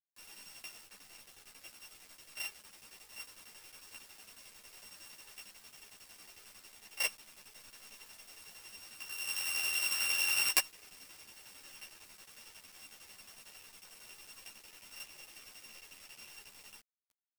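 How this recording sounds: a buzz of ramps at a fixed pitch in blocks of 16 samples; tremolo saw down 11 Hz, depth 55%; a quantiser's noise floor 10-bit, dither none; a shimmering, thickened sound

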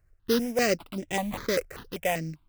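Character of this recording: aliases and images of a low sample rate 5.5 kHz, jitter 20%; notches that jump at a steady rate 5.1 Hz 940–4300 Hz

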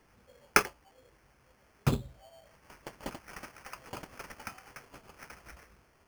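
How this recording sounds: phasing stages 6, 0.5 Hz, lowest notch 790–4000 Hz; aliases and images of a low sample rate 3.8 kHz, jitter 0%

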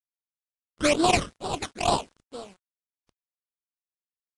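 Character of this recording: aliases and images of a low sample rate 1.8 kHz, jitter 20%; phasing stages 12, 2.2 Hz, lowest notch 740–2200 Hz; a quantiser's noise floor 10-bit, dither none; Vorbis

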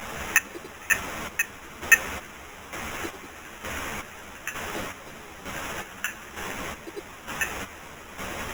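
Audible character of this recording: a quantiser's noise floor 6-bit, dither triangular; chopped level 1.1 Hz, depth 65%, duty 40%; aliases and images of a low sample rate 4.4 kHz, jitter 0%; a shimmering, thickened sound

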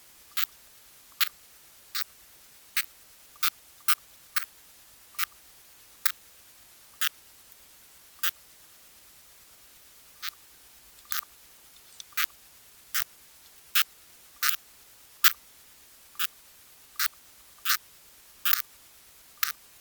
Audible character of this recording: tremolo saw up 8.9 Hz, depth 95%; a quantiser's noise floor 10-bit, dither triangular; Opus

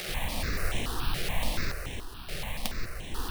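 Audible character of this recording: a quantiser's noise floor 6-bit, dither triangular; random-step tremolo, depth 75%; aliases and images of a low sample rate 7.1 kHz, jitter 20%; notches that jump at a steady rate 7 Hz 260–4700 Hz

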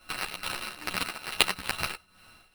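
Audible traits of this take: a buzz of ramps at a fixed pitch in blocks of 16 samples; tremolo triangle 2.3 Hz, depth 80%; aliases and images of a low sample rate 6.8 kHz, jitter 0%; a shimmering, thickened sound

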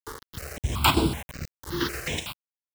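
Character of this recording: chopped level 3.1 Hz, depth 60%, duty 80%; a quantiser's noise floor 6-bit, dither none; notches that jump at a steady rate 5.3 Hz 680–6300 Hz

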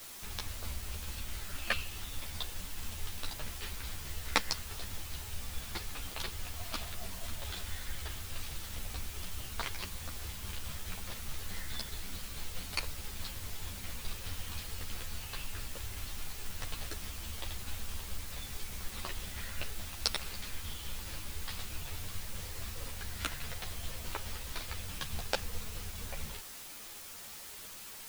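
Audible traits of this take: tremolo saw down 4.7 Hz, depth 40%; a quantiser's noise floor 8-bit, dither triangular; a shimmering, thickened sound

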